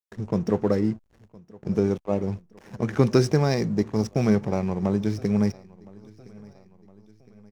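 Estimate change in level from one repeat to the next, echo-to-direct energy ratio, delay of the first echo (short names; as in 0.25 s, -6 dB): -6.0 dB, -22.5 dB, 1.014 s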